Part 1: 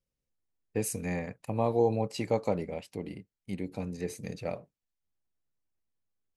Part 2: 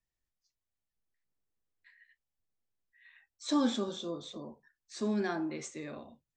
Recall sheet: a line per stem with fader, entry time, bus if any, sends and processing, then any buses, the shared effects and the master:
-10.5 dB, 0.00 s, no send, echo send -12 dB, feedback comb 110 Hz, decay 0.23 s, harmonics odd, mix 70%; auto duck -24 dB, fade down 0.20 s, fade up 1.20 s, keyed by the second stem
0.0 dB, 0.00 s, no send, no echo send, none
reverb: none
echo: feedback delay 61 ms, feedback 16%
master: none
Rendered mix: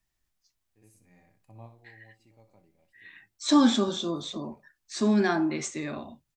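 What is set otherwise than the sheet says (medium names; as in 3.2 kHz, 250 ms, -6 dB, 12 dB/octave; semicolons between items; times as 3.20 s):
stem 2 0.0 dB -> +9.5 dB; master: extra peaking EQ 490 Hz -11 dB 0.25 oct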